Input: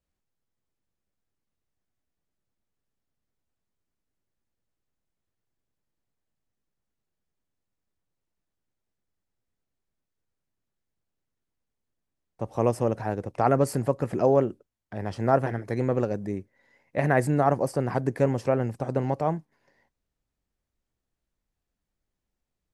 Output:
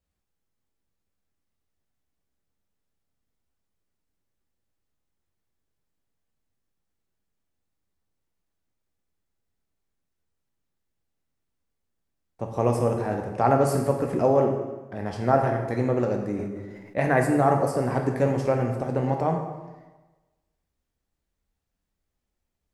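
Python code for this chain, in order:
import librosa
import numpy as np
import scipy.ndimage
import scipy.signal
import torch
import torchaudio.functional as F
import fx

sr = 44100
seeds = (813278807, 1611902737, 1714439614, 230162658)

y = fx.rev_plate(x, sr, seeds[0], rt60_s=1.2, hf_ratio=0.8, predelay_ms=0, drr_db=2.0)
y = fx.sustainer(y, sr, db_per_s=36.0, at=(16.38, 17.11), fade=0.02)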